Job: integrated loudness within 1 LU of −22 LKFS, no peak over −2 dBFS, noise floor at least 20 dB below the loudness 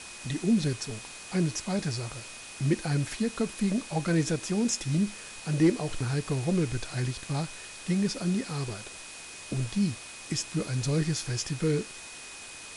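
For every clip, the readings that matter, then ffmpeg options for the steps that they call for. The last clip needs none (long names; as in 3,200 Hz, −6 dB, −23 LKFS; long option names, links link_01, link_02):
interfering tone 2,500 Hz; level of the tone −48 dBFS; background noise floor −44 dBFS; target noise floor −50 dBFS; integrated loudness −30.0 LKFS; sample peak −13.5 dBFS; target loudness −22.0 LKFS
→ -af "bandreject=frequency=2500:width=30"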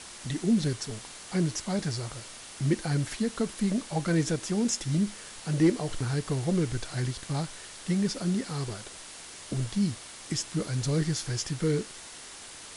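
interfering tone none found; background noise floor −45 dBFS; target noise floor −50 dBFS
→ -af "afftdn=noise_reduction=6:noise_floor=-45"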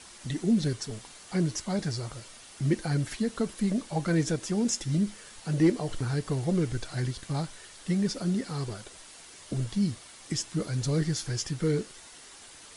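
background noise floor −50 dBFS; integrated loudness −30.0 LKFS; sample peak −14.0 dBFS; target loudness −22.0 LKFS
→ -af "volume=8dB"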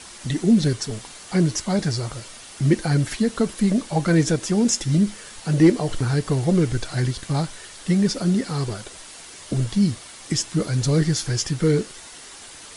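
integrated loudness −22.0 LKFS; sample peak −6.0 dBFS; background noise floor −42 dBFS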